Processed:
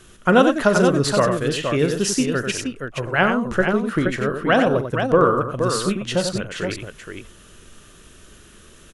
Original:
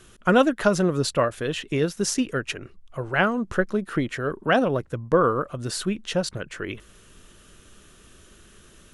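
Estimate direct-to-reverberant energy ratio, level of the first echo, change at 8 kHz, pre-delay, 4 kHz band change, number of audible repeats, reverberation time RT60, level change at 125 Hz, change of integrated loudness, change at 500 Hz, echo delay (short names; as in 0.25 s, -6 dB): none, -14.0 dB, +4.5 dB, none, +4.5 dB, 3, none, +4.5 dB, +4.5 dB, +4.5 dB, 41 ms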